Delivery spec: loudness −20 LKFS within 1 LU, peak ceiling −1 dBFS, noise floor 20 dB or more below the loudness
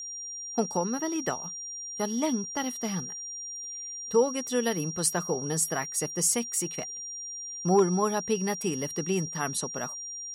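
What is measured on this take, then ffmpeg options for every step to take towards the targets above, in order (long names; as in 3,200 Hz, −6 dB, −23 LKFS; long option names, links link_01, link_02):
interfering tone 5,700 Hz; level of the tone −36 dBFS; integrated loudness −29.0 LKFS; sample peak −11.5 dBFS; target loudness −20.0 LKFS
→ -af "bandreject=frequency=5700:width=30"
-af "volume=9dB"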